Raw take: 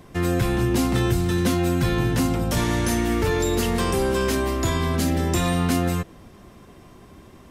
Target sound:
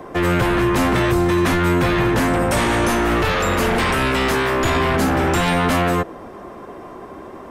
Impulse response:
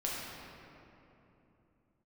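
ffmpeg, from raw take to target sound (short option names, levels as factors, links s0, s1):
-filter_complex "[0:a]asettb=1/sr,asplit=3[s0][s1][s2];[s0]atrim=end=2.274[s3];[s1]atrim=start=2.27:end=2.84,asetpts=PTS-STARTPTS,afade=t=in:d=0.004:c=qsin,afade=t=out:st=0.566:d=0.004:c=qsin,equalizer=f=8600:w=4.8:g=10[s4];[s2]atrim=start=2.836[s5];[s3][s4]acrossfade=d=0.004:c1=hsin:c2=qsin[s6];[s6][s5]acrossfade=d=0.004:c1=qsin:c2=hsin,acrossover=split=310|1600|3500[s7][s8][s9][s10];[s8]aeval=exprs='0.15*sin(PI/2*4.47*val(0)/0.15)':c=same[s11];[s7][s11][s9][s10]amix=inputs=4:normalize=0"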